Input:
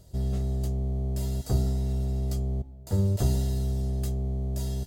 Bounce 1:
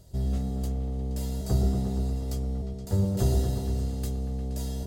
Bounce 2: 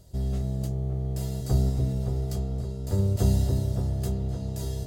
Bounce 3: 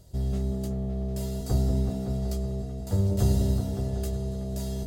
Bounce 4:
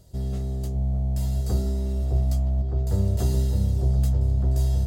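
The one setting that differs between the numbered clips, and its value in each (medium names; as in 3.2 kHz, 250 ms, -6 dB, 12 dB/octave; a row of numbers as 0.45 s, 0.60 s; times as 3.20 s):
delay with an opening low-pass, time: 118 ms, 284 ms, 188 ms, 610 ms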